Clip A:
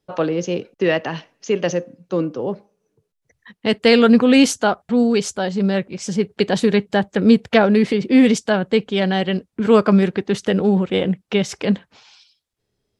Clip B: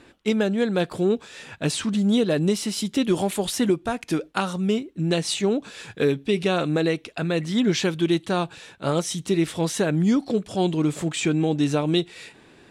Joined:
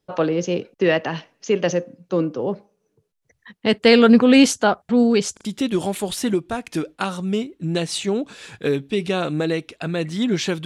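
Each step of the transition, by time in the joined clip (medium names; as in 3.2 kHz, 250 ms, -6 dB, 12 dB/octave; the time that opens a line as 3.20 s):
clip A
5.33 s: stutter in place 0.04 s, 3 plays
5.45 s: go over to clip B from 2.81 s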